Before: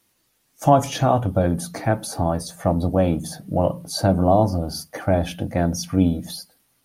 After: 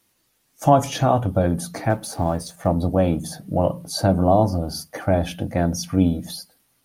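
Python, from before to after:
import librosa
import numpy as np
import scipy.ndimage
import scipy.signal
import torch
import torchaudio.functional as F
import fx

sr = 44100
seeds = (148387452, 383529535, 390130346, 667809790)

y = fx.law_mismatch(x, sr, coded='A', at=(1.9, 2.67))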